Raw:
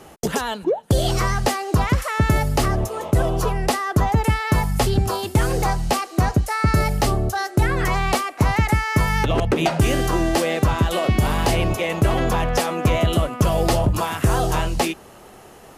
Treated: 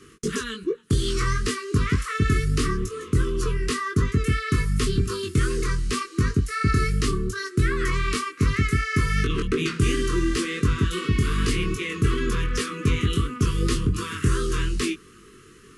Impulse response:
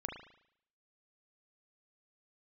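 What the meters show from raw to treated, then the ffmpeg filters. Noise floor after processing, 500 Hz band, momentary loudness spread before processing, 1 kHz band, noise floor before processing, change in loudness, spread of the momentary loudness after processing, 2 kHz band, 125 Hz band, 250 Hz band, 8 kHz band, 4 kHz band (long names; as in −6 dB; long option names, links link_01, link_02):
−49 dBFS, −6.5 dB, 3 LU, −10.0 dB, −44 dBFS, −4.0 dB, 4 LU, −3.0 dB, −3.0 dB, −3.0 dB, −3.5 dB, −3.0 dB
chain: -af "asuperstop=centerf=710:order=12:qfactor=1.1,flanger=delay=20:depth=2.4:speed=2.7" -ar 24000 -c:a aac -b:a 96k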